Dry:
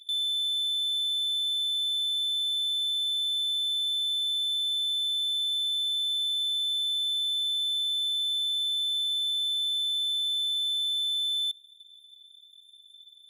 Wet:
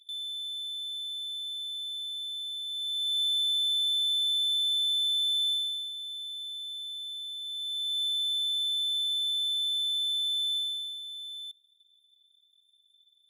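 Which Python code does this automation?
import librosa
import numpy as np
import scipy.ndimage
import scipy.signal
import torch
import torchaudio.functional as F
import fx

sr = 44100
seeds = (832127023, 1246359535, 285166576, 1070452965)

y = fx.gain(x, sr, db=fx.line((2.65, -8.0), (3.21, 1.0), (5.5, 1.0), (5.93, -10.0), (7.4, -10.0), (8.01, -1.0), (10.56, -1.0), (11.01, -12.0)))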